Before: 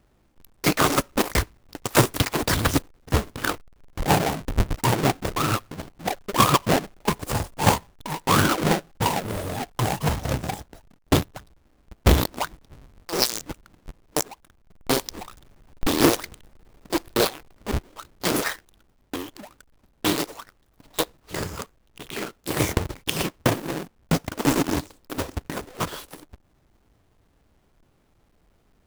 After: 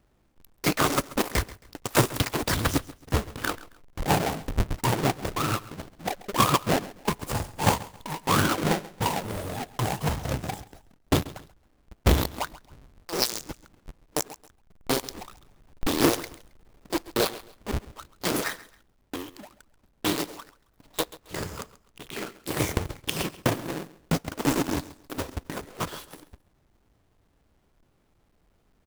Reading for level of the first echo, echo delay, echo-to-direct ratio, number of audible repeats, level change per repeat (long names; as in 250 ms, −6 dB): −18.5 dB, 135 ms, −18.0 dB, 2, −11.0 dB